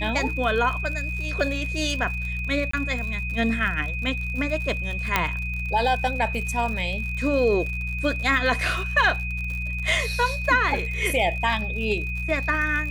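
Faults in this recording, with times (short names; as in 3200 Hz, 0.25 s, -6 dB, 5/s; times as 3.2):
crackle 75/s -31 dBFS
hum 60 Hz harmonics 3 -30 dBFS
tone 2500 Hz -30 dBFS
2.71–2.73 gap 24 ms
5.16 pop -4 dBFS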